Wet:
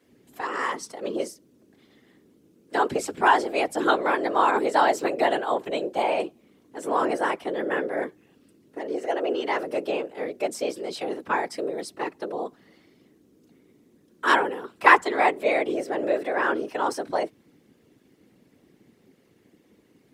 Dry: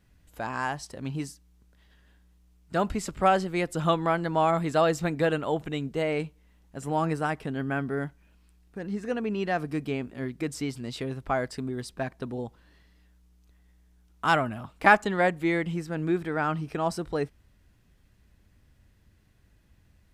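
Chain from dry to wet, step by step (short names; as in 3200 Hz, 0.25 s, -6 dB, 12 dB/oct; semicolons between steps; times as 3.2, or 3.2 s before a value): frequency shift +210 Hz; notch comb 300 Hz; whisperiser; gain +4 dB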